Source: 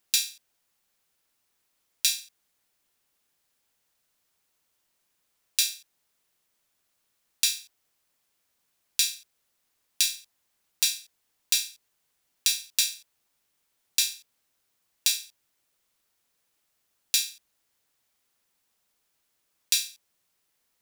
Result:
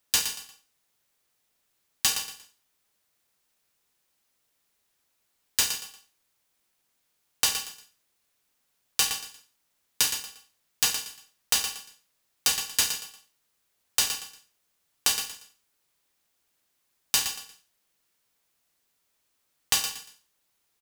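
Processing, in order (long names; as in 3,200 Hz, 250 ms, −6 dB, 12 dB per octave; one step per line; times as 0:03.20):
repeating echo 117 ms, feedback 29%, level −9 dB
ring modulator with a square carrier 960 Hz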